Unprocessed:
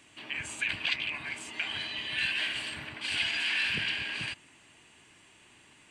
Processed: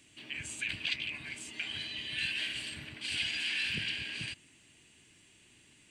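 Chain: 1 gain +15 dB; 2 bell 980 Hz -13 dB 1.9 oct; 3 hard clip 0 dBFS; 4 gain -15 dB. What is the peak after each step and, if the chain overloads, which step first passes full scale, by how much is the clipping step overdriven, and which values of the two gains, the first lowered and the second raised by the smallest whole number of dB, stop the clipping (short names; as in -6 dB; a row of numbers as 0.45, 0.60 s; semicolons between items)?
-1.5, -5.5, -5.5, -20.5 dBFS; no overload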